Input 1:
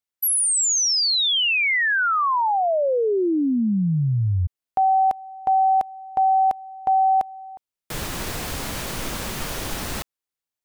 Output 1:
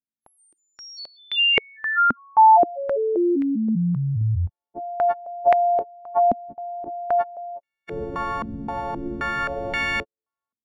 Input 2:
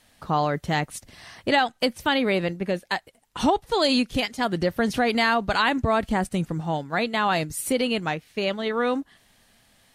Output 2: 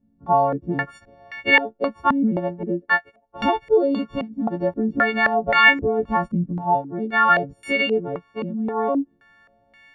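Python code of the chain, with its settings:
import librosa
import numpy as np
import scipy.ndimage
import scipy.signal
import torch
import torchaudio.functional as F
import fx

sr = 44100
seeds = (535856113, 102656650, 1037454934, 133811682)

y = fx.freq_snap(x, sr, grid_st=4)
y = fx.filter_held_lowpass(y, sr, hz=3.8, low_hz=240.0, high_hz=2100.0)
y = y * 10.0 ** (-2.0 / 20.0)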